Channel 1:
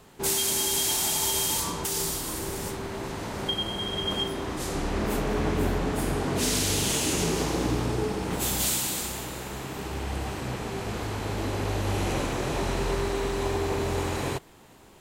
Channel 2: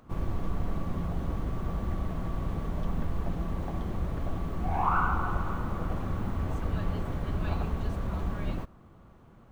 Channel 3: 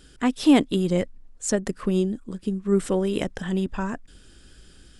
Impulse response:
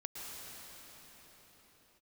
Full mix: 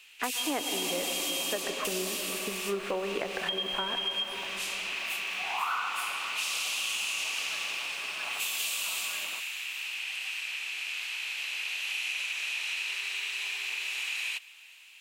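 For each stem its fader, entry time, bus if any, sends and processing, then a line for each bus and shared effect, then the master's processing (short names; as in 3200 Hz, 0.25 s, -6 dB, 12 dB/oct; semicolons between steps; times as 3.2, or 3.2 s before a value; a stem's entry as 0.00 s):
-2.0 dB, 0.00 s, bus A, send -20 dB, resonant high-pass 2600 Hz, resonance Q 6.3
+2.0 dB, 0.75 s, no bus, no send, HPF 1100 Hz 12 dB/oct
+2.0 dB, 0.00 s, bus A, send -6 dB, gate with hold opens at -40 dBFS; three-band isolator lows -22 dB, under 460 Hz, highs -22 dB, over 2900 Hz
bus A: 0.0 dB, compressor, threshold -28 dBFS, peak gain reduction 11 dB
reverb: on, pre-delay 0.104 s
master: compressor 2:1, threshold -30 dBFS, peak gain reduction 5 dB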